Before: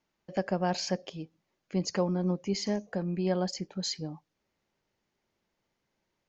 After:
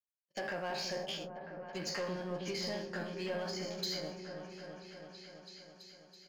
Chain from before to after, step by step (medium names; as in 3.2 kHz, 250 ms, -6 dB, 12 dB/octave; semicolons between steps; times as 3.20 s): spectral sustain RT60 0.55 s; treble shelf 2.4 kHz +11.5 dB; low-pass that closes with the level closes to 1.9 kHz, closed at -23 dBFS; tilt EQ +3 dB/octave; doubling 13 ms -8.5 dB; compression 1.5:1, threshold -50 dBFS, peak gain reduction 9.5 dB; waveshaping leveller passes 2; gate -35 dBFS, range -51 dB; delay with an opening low-pass 329 ms, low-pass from 400 Hz, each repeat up 1 oct, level -3 dB; trim -6 dB